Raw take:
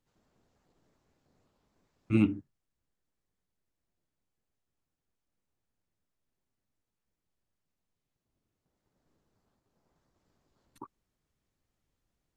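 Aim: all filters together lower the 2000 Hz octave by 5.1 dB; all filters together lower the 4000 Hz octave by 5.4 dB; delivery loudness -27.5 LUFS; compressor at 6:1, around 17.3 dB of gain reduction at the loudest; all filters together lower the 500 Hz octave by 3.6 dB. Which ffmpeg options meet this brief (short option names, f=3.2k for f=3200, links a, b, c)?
-af "equalizer=f=500:t=o:g=-7.5,equalizer=f=2k:t=o:g=-4,equalizer=f=4k:t=o:g=-6,acompressor=threshold=-41dB:ratio=6,volume=21.5dB"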